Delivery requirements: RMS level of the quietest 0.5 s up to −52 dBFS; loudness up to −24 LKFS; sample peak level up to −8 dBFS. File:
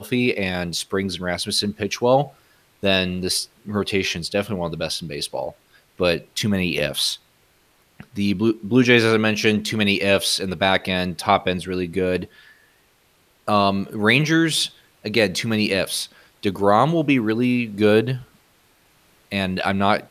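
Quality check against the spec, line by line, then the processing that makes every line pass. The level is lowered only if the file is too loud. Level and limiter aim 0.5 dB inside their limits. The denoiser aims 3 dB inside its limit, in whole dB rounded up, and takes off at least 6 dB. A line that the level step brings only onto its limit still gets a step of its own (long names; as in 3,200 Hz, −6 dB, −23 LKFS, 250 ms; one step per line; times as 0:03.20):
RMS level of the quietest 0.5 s −60 dBFS: in spec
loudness −20.5 LKFS: out of spec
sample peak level −2.5 dBFS: out of spec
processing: level −4 dB
brickwall limiter −8.5 dBFS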